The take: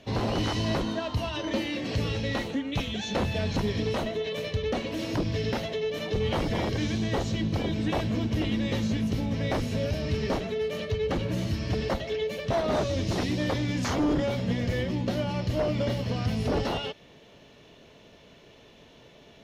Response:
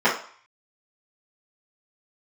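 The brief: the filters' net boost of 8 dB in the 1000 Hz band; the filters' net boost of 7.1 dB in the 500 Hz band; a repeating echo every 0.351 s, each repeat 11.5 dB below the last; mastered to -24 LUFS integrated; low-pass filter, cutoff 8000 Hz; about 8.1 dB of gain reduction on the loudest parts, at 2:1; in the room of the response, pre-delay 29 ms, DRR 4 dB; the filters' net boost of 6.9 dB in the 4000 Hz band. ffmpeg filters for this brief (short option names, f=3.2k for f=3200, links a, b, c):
-filter_complex "[0:a]lowpass=8k,equalizer=f=500:t=o:g=6.5,equalizer=f=1k:t=o:g=7.5,equalizer=f=4k:t=o:g=8.5,acompressor=threshold=-32dB:ratio=2,aecho=1:1:351|702|1053:0.266|0.0718|0.0194,asplit=2[a][b];[1:a]atrim=start_sample=2205,adelay=29[c];[b][c]afir=irnorm=-1:irlink=0,volume=-24dB[d];[a][d]amix=inputs=2:normalize=0,volume=4.5dB"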